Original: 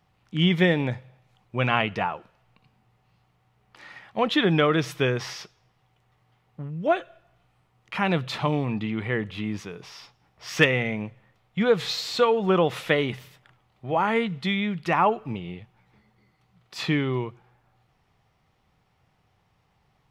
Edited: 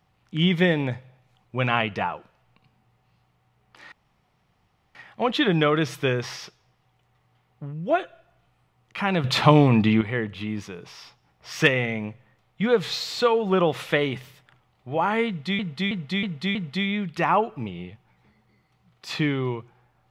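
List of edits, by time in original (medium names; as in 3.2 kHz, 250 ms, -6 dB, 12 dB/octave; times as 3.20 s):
3.92 s: insert room tone 1.03 s
8.21–8.98 s: gain +9.5 dB
14.24–14.56 s: loop, 5 plays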